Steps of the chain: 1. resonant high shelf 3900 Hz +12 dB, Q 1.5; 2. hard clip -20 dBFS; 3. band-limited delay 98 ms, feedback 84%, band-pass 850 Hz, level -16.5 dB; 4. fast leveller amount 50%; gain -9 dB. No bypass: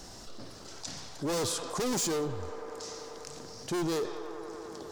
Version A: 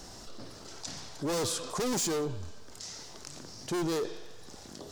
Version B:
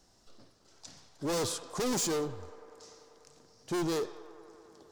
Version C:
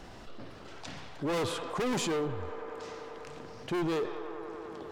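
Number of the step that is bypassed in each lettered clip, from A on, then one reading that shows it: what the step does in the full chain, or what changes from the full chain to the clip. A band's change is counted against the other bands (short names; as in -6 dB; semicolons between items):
3, momentary loudness spread change +2 LU; 4, crest factor change -3.5 dB; 1, 8 kHz band -9.0 dB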